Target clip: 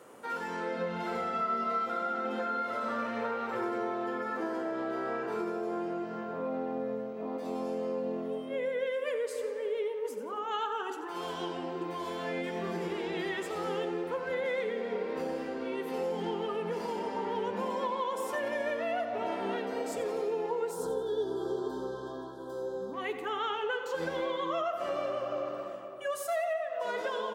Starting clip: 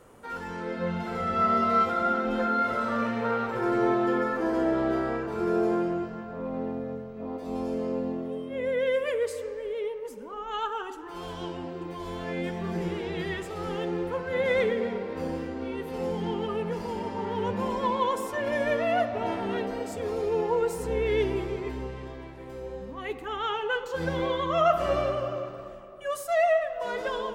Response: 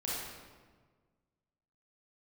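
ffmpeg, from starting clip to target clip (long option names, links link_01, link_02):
-filter_complex "[0:a]highpass=240,acompressor=threshold=-32dB:ratio=6,asettb=1/sr,asplit=3[link_01][link_02][link_03];[link_01]atrim=end=20.714[link_04];[link_02]atrim=start=20.71:end=22.94,asetpts=PTS-STARTPTS,afade=type=in:duration=0.004:curve=qsin,afade=type=out:start_time=2.226:duration=0.004:curve=qsin,asuperstop=centerf=2300:order=20:qfactor=1.5[link_05];[link_03]atrim=start=22.936[link_06];[link_04][link_05]acrossfade=duration=0.004:curve1=hsin:curve2=qsin[link_07];[link_07][link_06]acrossfade=duration=0.004:curve1=qsin:curve2=hsin,aecho=1:1:88|176|264|352:0.224|0.0963|0.0414|0.0178,asplit=2[link_08][link_09];[1:a]atrim=start_sample=2205,lowpass=1400,adelay=44[link_10];[link_09][link_10]afir=irnorm=-1:irlink=0,volume=-15dB[link_11];[link_08][link_11]amix=inputs=2:normalize=0,volume=1.5dB"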